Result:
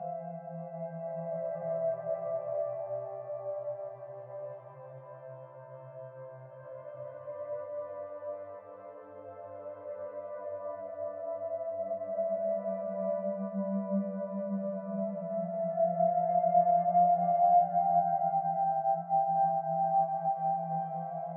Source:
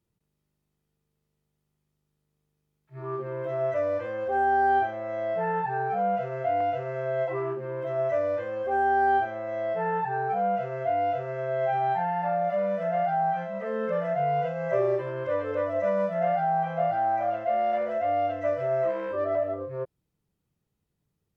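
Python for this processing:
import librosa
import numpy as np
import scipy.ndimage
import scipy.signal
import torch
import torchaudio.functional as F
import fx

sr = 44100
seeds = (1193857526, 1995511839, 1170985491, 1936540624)

y = fx.paulstretch(x, sr, seeds[0], factor=9.7, window_s=0.25, from_s=14.54)
y = fx.double_bandpass(y, sr, hz=370.0, octaves=1.9)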